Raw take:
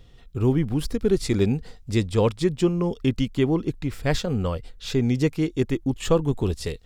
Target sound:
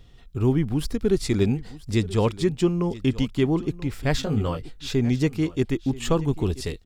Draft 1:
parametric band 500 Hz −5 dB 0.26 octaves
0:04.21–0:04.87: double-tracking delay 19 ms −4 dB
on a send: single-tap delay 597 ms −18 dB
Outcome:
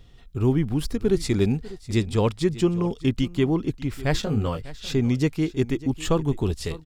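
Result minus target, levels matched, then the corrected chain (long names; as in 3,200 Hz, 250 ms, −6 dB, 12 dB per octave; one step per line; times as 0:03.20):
echo 385 ms early
parametric band 500 Hz −5 dB 0.26 octaves
0:04.21–0:04.87: double-tracking delay 19 ms −4 dB
on a send: single-tap delay 982 ms −18 dB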